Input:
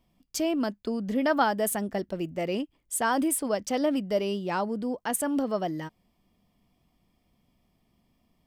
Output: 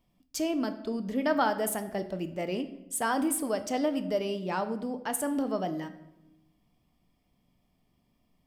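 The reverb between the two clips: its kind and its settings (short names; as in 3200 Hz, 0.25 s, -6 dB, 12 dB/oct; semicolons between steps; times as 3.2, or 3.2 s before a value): shoebox room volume 320 m³, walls mixed, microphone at 0.4 m; gain -3 dB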